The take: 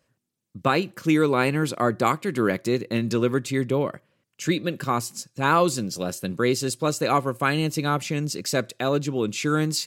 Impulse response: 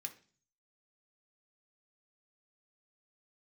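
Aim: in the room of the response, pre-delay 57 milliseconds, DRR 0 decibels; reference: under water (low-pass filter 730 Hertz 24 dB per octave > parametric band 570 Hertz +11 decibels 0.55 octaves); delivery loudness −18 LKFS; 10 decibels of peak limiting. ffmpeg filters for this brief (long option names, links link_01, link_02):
-filter_complex "[0:a]alimiter=limit=-17dB:level=0:latency=1,asplit=2[link_01][link_02];[1:a]atrim=start_sample=2205,adelay=57[link_03];[link_02][link_03]afir=irnorm=-1:irlink=0,volume=3.5dB[link_04];[link_01][link_04]amix=inputs=2:normalize=0,lowpass=frequency=730:width=0.5412,lowpass=frequency=730:width=1.3066,equalizer=frequency=570:width_type=o:width=0.55:gain=11,volume=7dB"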